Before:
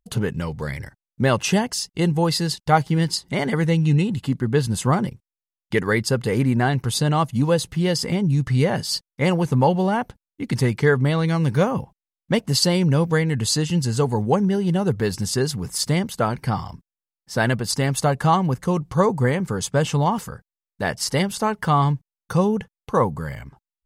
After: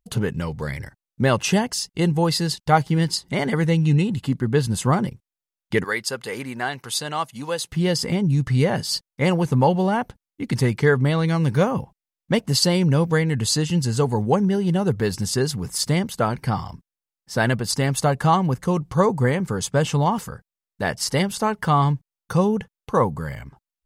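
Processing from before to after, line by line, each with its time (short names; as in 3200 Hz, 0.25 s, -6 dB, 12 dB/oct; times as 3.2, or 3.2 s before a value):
5.84–7.72 HPF 1000 Hz 6 dB/oct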